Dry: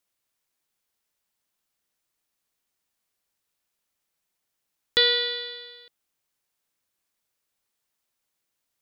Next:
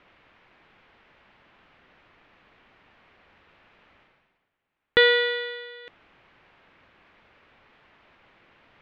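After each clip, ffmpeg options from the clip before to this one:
-af "lowpass=f=2.6k:w=0.5412,lowpass=f=2.6k:w=1.3066,areverse,acompressor=mode=upward:threshold=-47dB:ratio=2.5,areverse,volume=7.5dB"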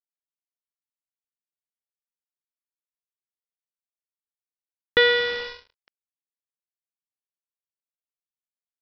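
-af "aresample=11025,acrusher=bits=4:mix=0:aa=0.5,aresample=44100,tremolo=f=0.59:d=0.37"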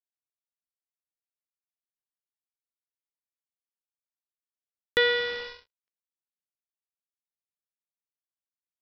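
-af "agate=range=-28dB:threshold=-48dB:ratio=16:detection=peak,volume=-5dB"

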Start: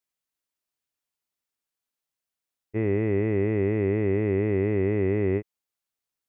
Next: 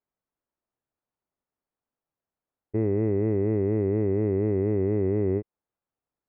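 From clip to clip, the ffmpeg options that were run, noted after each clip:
-af "lowpass=1k,alimiter=limit=-22.5dB:level=0:latency=1:release=172,volume=6.5dB"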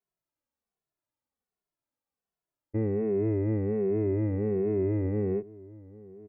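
-filter_complex "[0:a]asplit=2[a][b];[b]adelay=1283,volume=-20dB,highshelf=f=4k:g=-28.9[c];[a][c]amix=inputs=2:normalize=0,asplit=2[d][e];[e]adelay=2.3,afreqshift=-1.3[f];[d][f]amix=inputs=2:normalize=1"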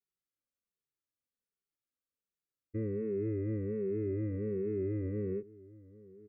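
-af "asuperstop=centerf=800:order=20:qfactor=1.5,volume=-7dB"

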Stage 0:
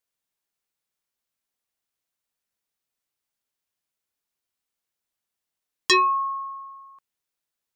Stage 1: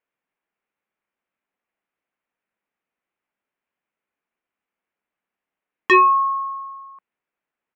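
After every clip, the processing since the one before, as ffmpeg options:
-af "firequalizer=gain_entry='entry(120,0);entry(190,10);entry(2400,9);entry(4400,-16)':delay=0.05:min_phase=1,volume=-3dB"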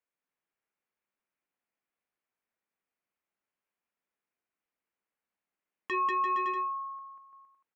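-af "aecho=1:1:190|342|463.6|560.9|638.7:0.631|0.398|0.251|0.158|0.1,alimiter=limit=-15.5dB:level=0:latency=1:release=88,volume=-8.5dB"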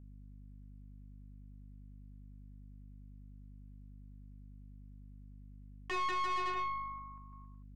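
-af "aeval=exprs='val(0)+0.00398*(sin(2*PI*50*n/s)+sin(2*PI*2*50*n/s)/2+sin(2*PI*3*50*n/s)/3+sin(2*PI*4*50*n/s)/4+sin(2*PI*5*50*n/s)/5)':c=same,aeval=exprs='(tanh(39.8*val(0)+0.65)-tanh(0.65))/39.8':c=same"

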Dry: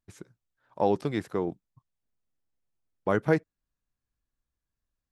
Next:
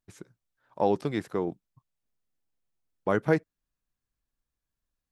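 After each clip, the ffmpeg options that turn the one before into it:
-af "equalizer=f=79:t=o:w=0.86:g=-3.5"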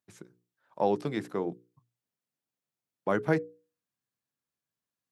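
-af "highpass=f=110:w=0.5412,highpass=f=110:w=1.3066,bandreject=f=60:t=h:w=6,bandreject=f=120:t=h:w=6,bandreject=f=180:t=h:w=6,bandreject=f=240:t=h:w=6,bandreject=f=300:t=h:w=6,bandreject=f=360:t=h:w=6,bandreject=f=420:t=h:w=6,bandreject=f=480:t=h:w=6,volume=-1.5dB"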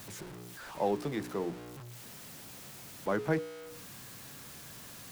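-filter_complex "[0:a]aeval=exprs='val(0)+0.5*0.0158*sgn(val(0))':c=same,acrossover=split=170|2700[a][b][c];[a]acompressor=mode=upward:threshold=-47dB:ratio=2.5[d];[d][b][c]amix=inputs=3:normalize=0,volume=-4.5dB"

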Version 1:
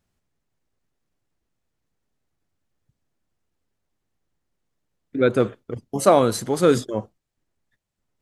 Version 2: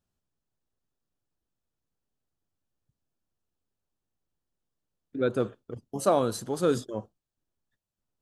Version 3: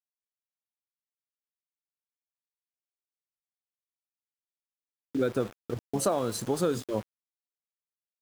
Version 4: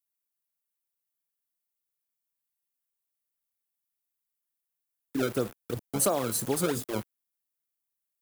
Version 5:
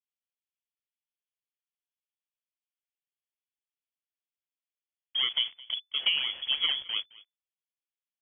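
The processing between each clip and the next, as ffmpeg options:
-af "equalizer=f=2.1k:t=o:w=0.35:g=-9.5,volume=-8dB"
-af "acompressor=threshold=-30dB:ratio=6,aeval=exprs='val(0)*gte(abs(val(0)),0.00501)':c=same,volume=6dB"
-filter_complex "[0:a]acrossover=split=330|600|7500[a][b][c][d];[b]acrusher=samples=28:mix=1:aa=0.000001:lfo=1:lforange=44.8:lforate=2.9[e];[d]crystalizer=i=2:c=0[f];[a][e][c][f]amix=inputs=4:normalize=0"
-filter_complex "[0:a]acrossover=split=1400[a][b];[b]aeval=exprs='val(0)*gte(abs(val(0)),0.00473)':c=same[c];[a][c]amix=inputs=2:normalize=0,aecho=1:1:216:0.0841,lowpass=f=3k:t=q:w=0.5098,lowpass=f=3k:t=q:w=0.6013,lowpass=f=3k:t=q:w=0.9,lowpass=f=3k:t=q:w=2.563,afreqshift=-3500"

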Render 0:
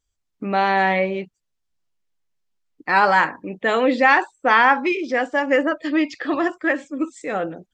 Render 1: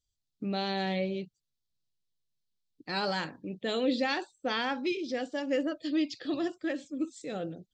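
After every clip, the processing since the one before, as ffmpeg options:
-af "equalizer=f=125:t=o:w=1:g=8,equalizer=f=1k:t=o:w=1:g=-12,equalizer=f=2k:t=o:w=1:g=-10,equalizer=f=4k:t=o:w=1:g=11,volume=-8.5dB"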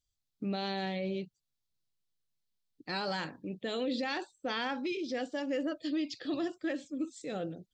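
-af "alimiter=level_in=1dB:limit=-24dB:level=0:latency=1:release=35,volume=-1dB,volume=-1dB"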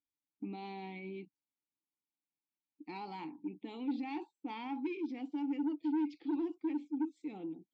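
-filter_complex "[0:a]asplit=3[a][b][c];[a]bandpass=f=300:t=q:w=8,volume=0dB[d];[b]bandpass=f=870:t=q:w=8,volume=-6dB[e];[c]bandpass=f=2.24k:t=q:w=8,volume=-9dB[f];[d][e][f]amix=inputs=3:normalize=0,asoftclip=type=tanh:threshold=-35dB,volume=6.5dB"

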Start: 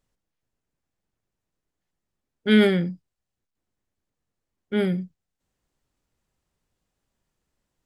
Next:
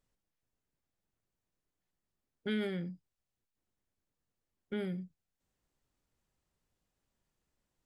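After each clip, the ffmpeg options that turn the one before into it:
-af "acompressor=threshold=-33dB:ratio=2.5,volume=-5dB"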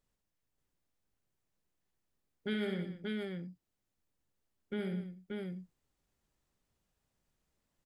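-af "aecho=1:1:67|183|582:0.447|0.237|0.708,volume=-1dB"

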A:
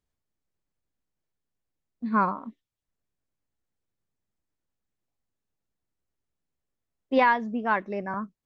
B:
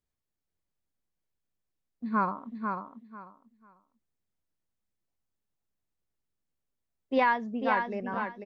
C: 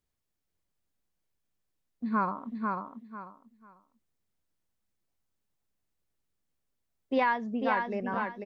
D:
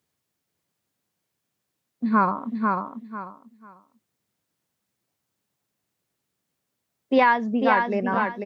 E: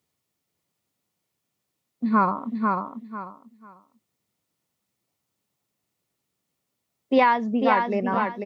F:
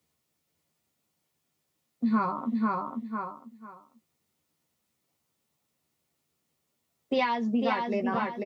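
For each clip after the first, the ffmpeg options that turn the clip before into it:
-af "aecho=1:1:494|988|1482:0.531|0.111|0.0234,volume=-4dB"
-af "acompressor=threshold=-34dB:ratio=1.5,volume=3dB"
-af "highpass=f=100:w=0.5412,highpass=f=100:w=1.3066,volume=8.5dB"
-af "bandreject=f=1.6k:w=8.1"
-filter_complex "[0:a]asplit=2[a][b];[b]adelay=13,volume=-4.5dB[c];[a][c]amix=inputs=2:normalize=0,acrossover=split=150|3000[d][e][f];[e]acompressor=threshold=-28dB:ratio=3[g];[d][g][f]amix=inputs=3:normalize=0"

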